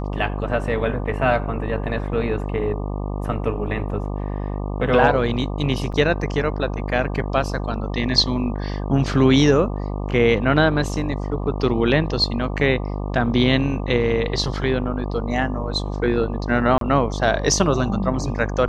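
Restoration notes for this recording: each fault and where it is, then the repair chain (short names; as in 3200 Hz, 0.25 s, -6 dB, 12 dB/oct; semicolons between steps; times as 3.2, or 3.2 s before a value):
buzz 50 Hz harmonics 24 -26 dBFS
5.92–5.93 gap 6.1 ms
16.78–16.81 gap 32 ms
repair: de-hum 50 Hz, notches 24; interpolate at 5.92, 6.1 ms; interpolate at 16.78, 32 ms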